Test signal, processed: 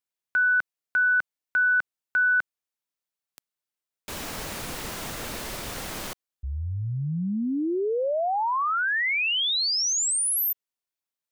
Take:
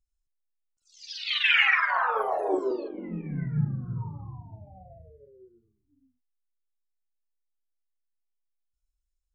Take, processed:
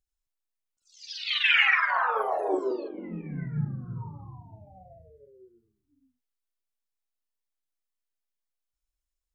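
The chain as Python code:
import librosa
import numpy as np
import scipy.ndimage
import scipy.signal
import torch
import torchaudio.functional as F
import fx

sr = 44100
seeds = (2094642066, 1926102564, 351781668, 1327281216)

y = fx.low_shelf(x, sr, hz=140.0, db=-6.5)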